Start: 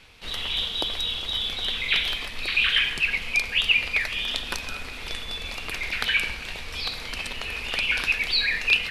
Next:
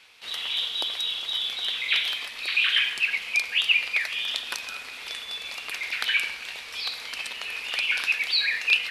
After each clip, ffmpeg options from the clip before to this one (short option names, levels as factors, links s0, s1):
-af "highpass=f=1100:p=1"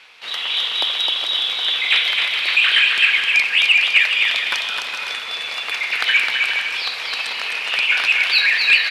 -filter_complex "[0:a]asplit=2[s0][s1];[s1]highpass=f=720:p=1,volume=3.55,asoftclip=type=tanh:threshold=0.631[s2];[s0][s2]amix=inputs=2:normalize=0,lowpass=f=2200:p=1,volume=0.501,asplit=2[s3][s4];[s4]aecho=0:1:260|416|509.6|565.8|599.5:0.631|0.398|0.251|0.158|0.1[s5];[s3][s5]amix=inputs=2:normalize=0,volume=1.78"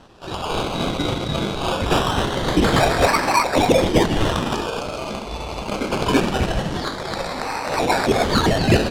-filter_complex "[0:a]acrossover=split=200|910|4600[s0][s1][s2][s3];[s2]acrusher=samples=19:mix=1:aa=0.000001:lfo=1:lforange=11.4:lforate=0.23[s4];[s0][s1][s4][s3]amix=inputs=4:normalize=0,adynamicsmooth=sensitivity=0.5:basefreq=7600"